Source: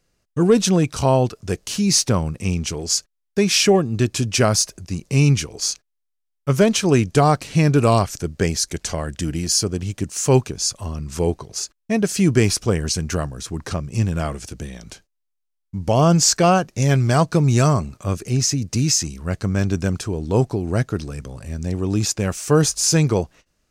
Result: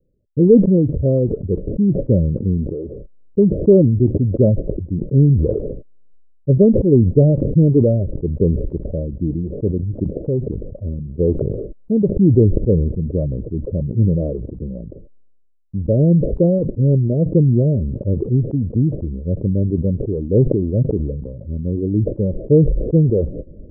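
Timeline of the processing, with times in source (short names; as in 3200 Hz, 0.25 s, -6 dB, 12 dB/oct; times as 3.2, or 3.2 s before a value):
10.03–10.61 compressor 3:1, threshold -21 dBFS
whole clip: reverb removal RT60 1.1 s; steep low-pass 580 Hz 96 dB/oct; sustainer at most 37 dB/s; gain +4 dB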